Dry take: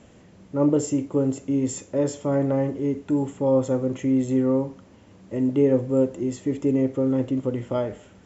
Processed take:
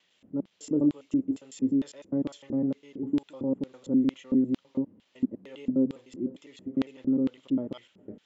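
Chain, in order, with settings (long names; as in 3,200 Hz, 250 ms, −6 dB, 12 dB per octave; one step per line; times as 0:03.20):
slices reordered back to front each 101 ms, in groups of 3
auto-filter band-pass square 2.2 Hz 250–3,500 Hz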